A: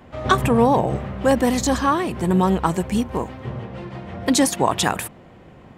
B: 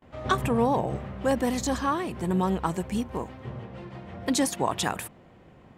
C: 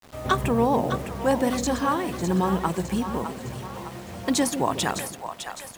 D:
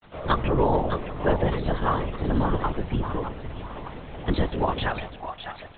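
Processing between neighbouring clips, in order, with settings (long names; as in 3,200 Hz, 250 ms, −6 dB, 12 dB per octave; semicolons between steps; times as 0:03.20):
noise gate with hold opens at −40 dBFS; level −7.5 dB
bit reduction 8 bits; echo with a time of its own for lows and highs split 570 Hz, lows 142 ms, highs 608 ms, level −8.5 dB; level +2 dB
linear-prediction vocoder at 8 kHz whisper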